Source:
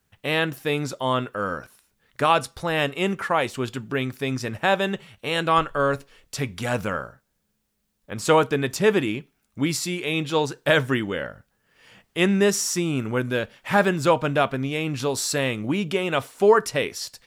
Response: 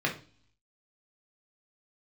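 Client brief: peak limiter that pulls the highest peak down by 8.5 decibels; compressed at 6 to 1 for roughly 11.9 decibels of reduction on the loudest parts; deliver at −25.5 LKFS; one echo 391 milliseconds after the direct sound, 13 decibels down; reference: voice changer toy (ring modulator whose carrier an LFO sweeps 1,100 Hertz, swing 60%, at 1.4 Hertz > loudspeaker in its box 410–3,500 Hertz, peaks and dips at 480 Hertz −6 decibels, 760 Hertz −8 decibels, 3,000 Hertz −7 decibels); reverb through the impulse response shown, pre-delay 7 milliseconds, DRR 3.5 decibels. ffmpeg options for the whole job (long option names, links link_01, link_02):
-filter_complex "[0:a]acompressor=threshold=-25dB:ratio=6,alimiter=limit=-20.5dB:level=0:latency=1,aecho=1:1:391:0.224,asplit=2[link_01][link_02];[1:a]atrim=start_sample=2205,adelay=7[link_03];[link_02][link_03]afir=irnorm=-1:irlink=0,volume=-13dB[link_04];[link_01][link_04]amix=inputs=2:normalize=0,aeval=exprs='val(0)*sin(2*PI*1100*n/s+1100*0.6/1.4*sin(2*PI*1.4*n/s))':channel_layout=same,highpass=410,equalizer=frequency=480:width_type=q:width=4:gain=-6,equalizer=frequency=760:width_type=q:width=4:gain=-8,equalizer=frequency=3000:width_type=q:width=4:gain=-7,lowpass=frequency=3500:width=0.5412,lowpass=frequency=3500:width=1.3066,volume=8.5dB"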